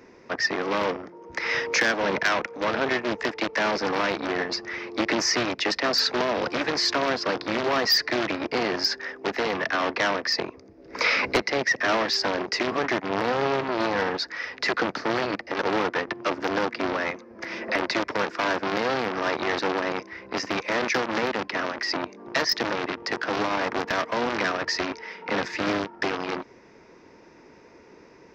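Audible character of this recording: noise floor -52 dBFS; spectral tilt -3.0 dB/octave

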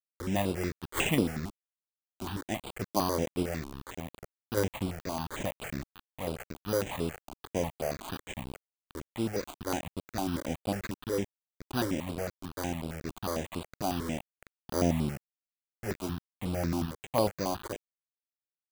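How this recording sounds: aliases and images of a low sample rate 5.4 kHz, jitter 0%; random-step tremolo; a quantiser's noise floor 6-bit, dither none; notches that jump at a steady rate 11 Hz 490–6300 Hz

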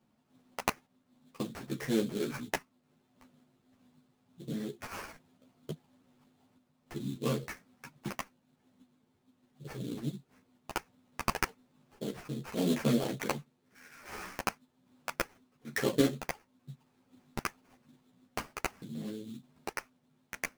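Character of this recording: random-step tremolo 3.5 Hz; aliases and images of a low sample rate 3.8 kHz, jitter 20%; a shimmering, thickened sound

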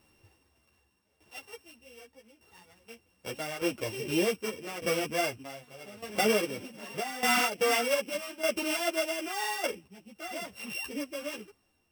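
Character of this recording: a buzz of ramps at a fixed pitch in blocks of 16 samples; tremolo saw down 0.83 Hz, depth 80%; a shimmering, thickened sound

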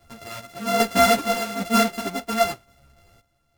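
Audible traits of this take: a buzz of ramps at a fixed pitch in blocks of 64 samples; random-step tremolo 2.5 Hz, depth 80%; a shimmering, thickened sound

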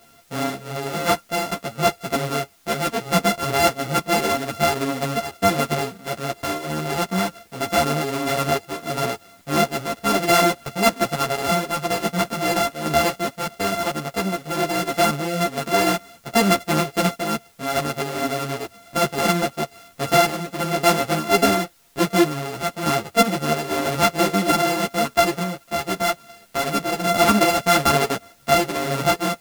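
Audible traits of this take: a buzz of ramps at a fixed pitch in blocks of 64 samples; random-step tremolo; a quantiser's noise floor 10-bit, dither triangular; a shimmering, thickened sound

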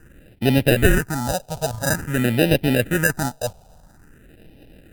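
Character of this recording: aliases and images of a low sample rate 1.1 kHz, jitter 0%; phasing stages 4, 0.49 Hz, lowest notch 320–1200 Hz; Opus

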